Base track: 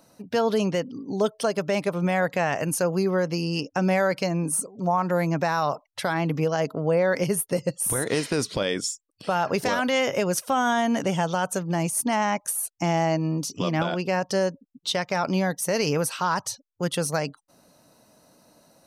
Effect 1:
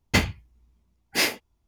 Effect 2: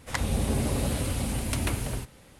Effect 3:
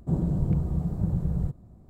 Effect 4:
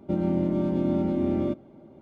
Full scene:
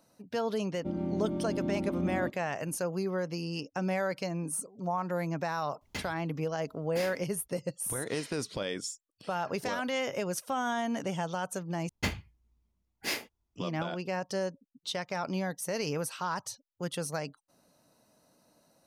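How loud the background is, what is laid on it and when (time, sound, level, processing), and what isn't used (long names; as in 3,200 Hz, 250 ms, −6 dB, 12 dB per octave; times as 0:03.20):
base track −9 dB
0:00.76: mix in 4 −8.5 dB
0:05.81: mix in 1 −16.5 dB + multiband upward and downward compressor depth 70%
0:11.89: overwrite with 1 −10.5 dB
not used: 2, 3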